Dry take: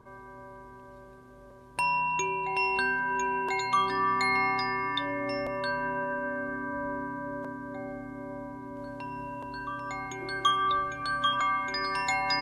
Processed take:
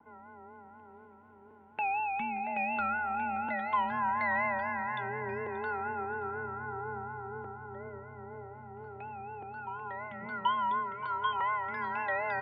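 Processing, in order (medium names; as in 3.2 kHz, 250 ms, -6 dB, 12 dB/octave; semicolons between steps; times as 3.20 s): mistuned SSB -160 Hz 270–2800 Hz; vibrato 4.1 Hz 88 cents; bass shelf 210 Hz -4.5 dB; on a send: tape echo 579 ms, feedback 53%, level -13 dB, low-pass 1.7 kHz; on the sum: trim -3.5 dB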